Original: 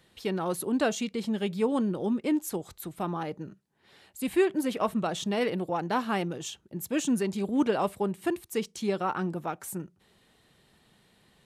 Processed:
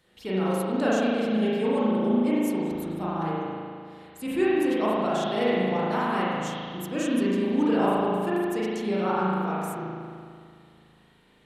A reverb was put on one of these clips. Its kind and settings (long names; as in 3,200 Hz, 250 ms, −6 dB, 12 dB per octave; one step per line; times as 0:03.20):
spring reverb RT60 2.2 s, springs 37 ms, chirp 65 ms, DRR −8 dB
level −4.5 dB